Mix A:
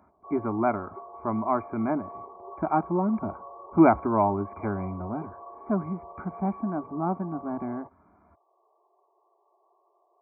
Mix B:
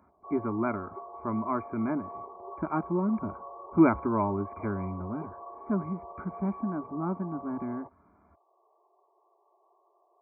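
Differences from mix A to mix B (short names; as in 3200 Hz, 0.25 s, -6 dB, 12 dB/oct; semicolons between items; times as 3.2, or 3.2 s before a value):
speech: add bell 730 Hz -14.5 dB 0.38 oct; reverb: off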